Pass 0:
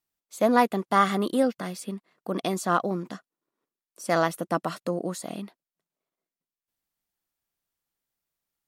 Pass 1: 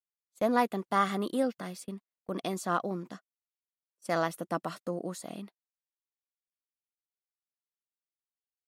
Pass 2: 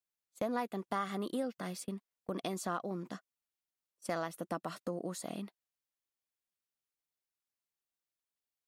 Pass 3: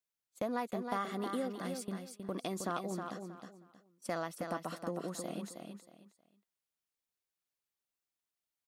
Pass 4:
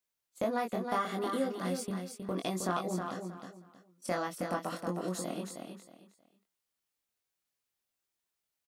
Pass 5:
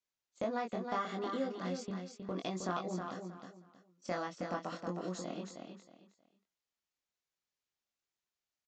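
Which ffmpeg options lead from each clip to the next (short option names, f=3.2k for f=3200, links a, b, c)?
-af "agate=range=-32dB:threshold=-39dB:ratio=16:detection=peak,volume=-6dB"
-af "acompressor=threshold=-36dB:ratio=3,volume=1dB"
-af "aecho=1:1:316|632|948:0.501|0.125|0.0313,volume=-1dB"
-filter_complex "[0:a]asplit=2[a][b];[b]adelay=22,volume=-3dB[c];[a][c]amix=inputs=2:normalize=0,volume=2.5dB"
-af "aresample=16000,aresample=44100,volume=-4dB"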